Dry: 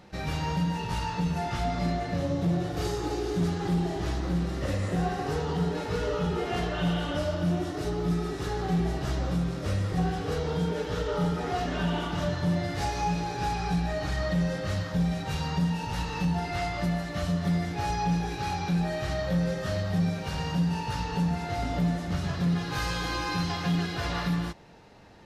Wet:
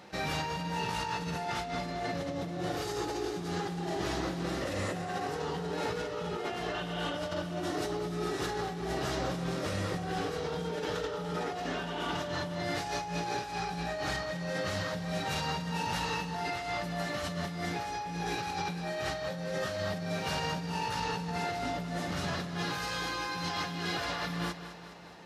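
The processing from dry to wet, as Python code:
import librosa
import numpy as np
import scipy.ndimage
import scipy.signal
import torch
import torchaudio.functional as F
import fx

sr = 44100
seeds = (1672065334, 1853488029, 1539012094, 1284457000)

y = fx.highpass(x, sr, hz=350.0, slope=6)
y = fx.over_compress(y, sr, threshold_db=-36.0, ratio=-1.0)
y = fx.echo_feedback(y, sr, ms=208, feedback_pct=60, wet_db=-12.5)
y = y * librosa.db_to_amplitude(1.0)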